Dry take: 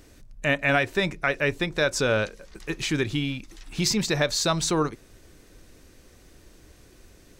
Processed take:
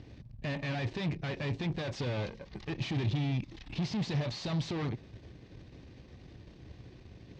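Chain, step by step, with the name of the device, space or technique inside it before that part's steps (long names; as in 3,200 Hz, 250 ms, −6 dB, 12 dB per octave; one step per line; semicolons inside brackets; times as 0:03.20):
dynamic equaliser 7,900 Hz, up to +5 dB, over −42 dBFS, Q 0.78
guitar amplifier (tube saturation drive 38 dB, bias 0.75; bass and treble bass +10 dB, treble +1 dB; loudspeaker in its box 80–4,400 Hz, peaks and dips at 120 Hz +4 dB, 820 Hz +3 dB, 1,400 Hz −7 dB)
level +2 dB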